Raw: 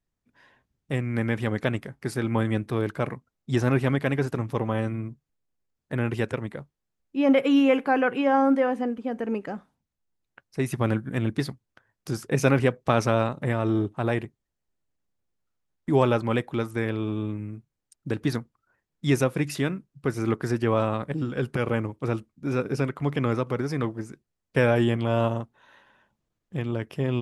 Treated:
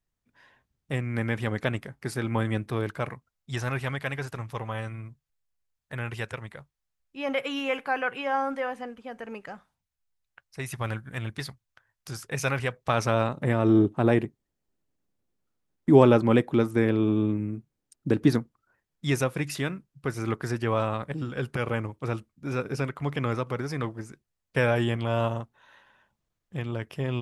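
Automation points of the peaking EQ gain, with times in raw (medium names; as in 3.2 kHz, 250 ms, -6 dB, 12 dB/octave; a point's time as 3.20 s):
peaking EQ 280 Hz 2 oct
2.78 s -4 dB
3.51 s -14.5 dB
12.67 s -14.5 dB
13.14 s -3.5 dB
13.80 s +6.5 dB
18.29 s +6.5 dB
19.06 s -5.5 dB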